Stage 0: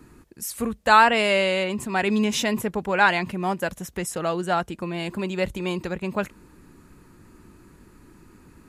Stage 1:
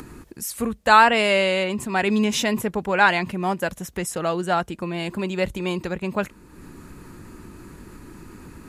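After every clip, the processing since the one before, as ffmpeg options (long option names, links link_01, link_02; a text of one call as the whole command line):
ffmpeg -i in.wav -af "acompressor=mode=upward:threshold=-34dB:ratio=2.5,volume=1.5dB" out.wav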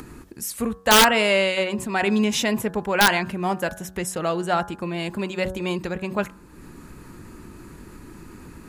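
ffmpeg -i in.wav -af "bandreject=frequency=93.19:width_type=h:width=4,bandreject=frequency=186.38:width_type=h:width=4,bandreject=frequency=279.57:width_type=h:width=4,bandreject=frequency=372.76:width_type=h:width=4,bandreject=frequency=465.95:width_type=h:width=4,bandreject=frequency=559.14:width_type=h:width=4,bandreject=frequency=652.33:width_type=h:width=4,bandreject=frequency=745.52:width_type=h:width=4,bandreject=frequency=838.71:width_type=h:width=4,bandreject=frequency=931.9:width_type=h:width=4,bandreject=frequency=1025.09:width_type=h:width=4,bandreject=frequency=1118.28:width_type=h:width=4,bandreject=frequency=1211.47:width_type=h:width=4,bandreject=frequency=1304.66:width_type=h:width=4,bandreject=frequency=1397.85:width_type=h:width=4,bandreject=frequency=1491.04:width_type=h:width=4,bandreject=frequency=1584.23:width_type=h:width=4,bandreject=frequency=1677.42:width_type=h:width=4,bandreject=frequency=1770.61:width_type=h:width=4,aeval=exprs='(mod(2*val(0)+1,2)-1)/2':channel_layout=same" out.wav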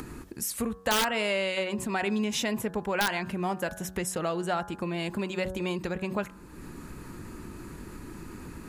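ffmpeg -i in.wav -af "acompressor=threshold=-29dB:ratio=2.5" out.wav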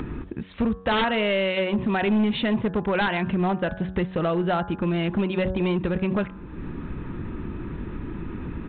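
ffmpeg -i in.wav -af "lowshelf=frequency=370:gain=7.5,aresample=8000,asoftclip=type=hard:threshold=-21.5dB,aresample=44100,volume=4dB" out.wav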